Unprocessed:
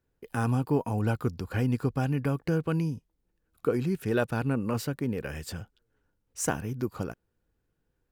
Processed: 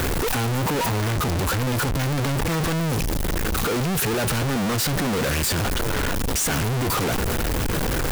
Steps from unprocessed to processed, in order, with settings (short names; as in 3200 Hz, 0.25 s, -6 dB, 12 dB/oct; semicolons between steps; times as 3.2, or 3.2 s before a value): infinite clipping; gain +8 dB